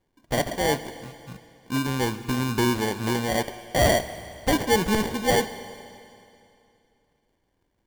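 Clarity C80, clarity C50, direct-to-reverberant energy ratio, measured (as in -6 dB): 13.5 dB, 13.0 dB, 11.5 dB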